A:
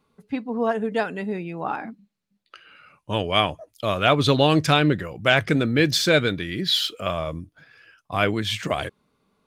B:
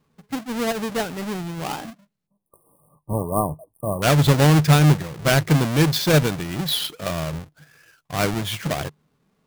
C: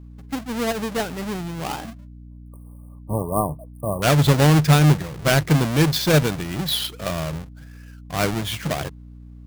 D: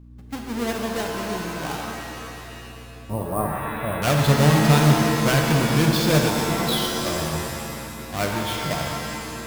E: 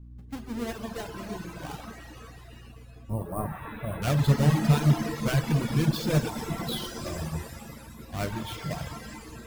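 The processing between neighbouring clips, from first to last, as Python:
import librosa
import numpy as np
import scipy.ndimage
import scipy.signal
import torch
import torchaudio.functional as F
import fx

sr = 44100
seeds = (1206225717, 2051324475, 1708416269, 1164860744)

y1 = fx.halfwave_hold(x, sr)
y1 = fx.spec_erase(y1, sr, start_s=2.27, length_s=1.75, low_hz=1200.0, high_hz=8400.0)
y1 = fx.peak_eq(y1, sr, hz=150.0, db=9.5, octaves=0.3)
y1 = y1 * 10.0 ** (-5.0 / 20.0)
y2 = fx.add_hum(y1, sr, base_hz=60, snr_db=19)
y3 = fx.rev_shimmer(y2, sr, seeds[0], rt60_s=2.5, semitones=7, shimmer_db=-2, drr_db=2.0)
y3 = y3 * 10.0 ** (-4.0 / 20.0)
y4 = fx.dereverb_blind(y3, sr, rt60_s=1.6)
y4 = fx.low_shelf(y4, sr, hz=210.0, db=10.0)
y4 = y4 * 10.0 ** (-8.5 / 20.0)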